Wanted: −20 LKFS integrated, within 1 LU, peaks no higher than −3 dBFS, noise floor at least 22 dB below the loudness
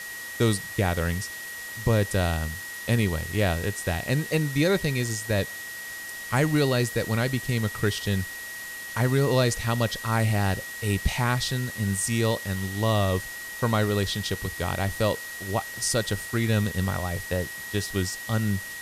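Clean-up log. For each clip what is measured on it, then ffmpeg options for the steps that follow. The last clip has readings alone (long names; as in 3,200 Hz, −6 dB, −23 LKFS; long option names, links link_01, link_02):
interfering tone 1,900 Hz; level of the tone −36 dBFS; background noise floor −37 dBFS; target noise floor −49 dBFS; integrated loudness −26.5 LKFS; sample peak −10.0 dBFS; target loudness −20.0 LKFS
→ -af "bandreject=frequency=1900:width=30"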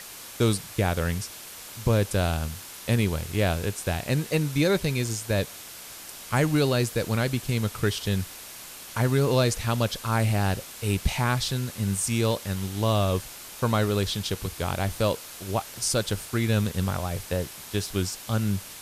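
interfering tone none found; background noise floor −42 dBFS; target noise floor −49 dBFS
→ -af "afftdn=noise_reduction=7:noise_floor=-42"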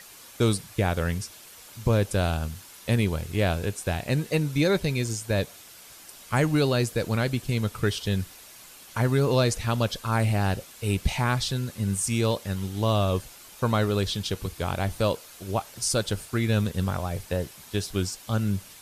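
background noise floor −48 dBFS; target noise floor −49 dBFS
→ -af "afftdn=noise_reduction=6:noise_floor=-48"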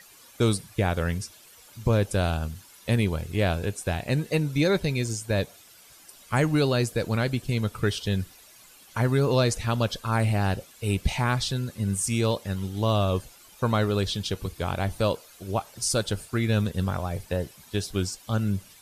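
background noise floor −52 dBFS; integrated loudness −27.0 LKFS; sample peak −10.5 dBFS; target loudness −20.0 LKFS
→ -af "volume=7dB"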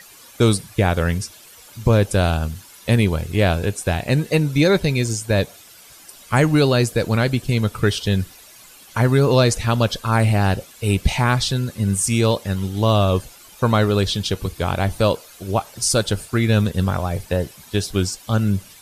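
integrated loudness −20.0 LKFS; sample peak −3.5 dBFS; background noise floor −45 dBFS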